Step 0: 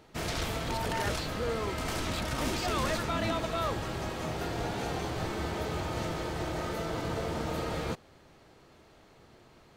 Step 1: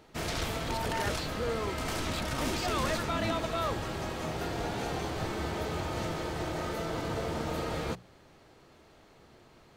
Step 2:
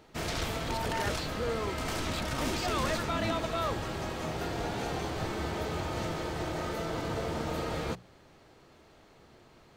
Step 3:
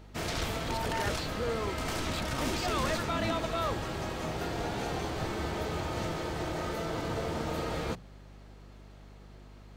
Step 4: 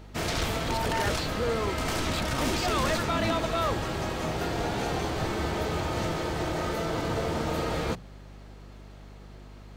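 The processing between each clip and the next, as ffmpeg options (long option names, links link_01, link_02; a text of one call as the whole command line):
ffmpeg -i in.wav -af "bandreject=frequency=60:width_type=h:width=6,bandreject=frequency=120:width_type=h:width=6,bandreject=frequency=180:width_type=h:width=6" out.wav
ffmpeg -i in.wav -af "equalizer=frequency=11000:width_type=o:width=0.42:gain=-2.5" out.wav
ffmpeg -i in.wav -af "aeval=exprs='val(0)+0.00316*(sin(2*PI*50*n/s)+sin(2*PI*2*50*n/s)/2+sin(2*PI*3*50*n/s)/3+sin(2*PI*4*50*n/s)/4+sin(2*PI*5*50*n/s)/5)':channel_layout=same" out.wav
ffmpeg -i in.wav -af "volume=25dB,asoftclip=hard,volume=-25dB,volume=4.5dB" out.wav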